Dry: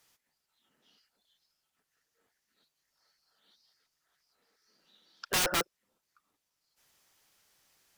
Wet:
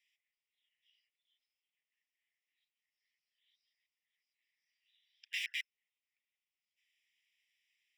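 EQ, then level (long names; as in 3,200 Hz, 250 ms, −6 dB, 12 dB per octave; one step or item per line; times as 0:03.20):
Savitzky-Golay smoothing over 25 samples
Butterworth high-pass 1,900 Hz 96 dB per octave
−2.0 dB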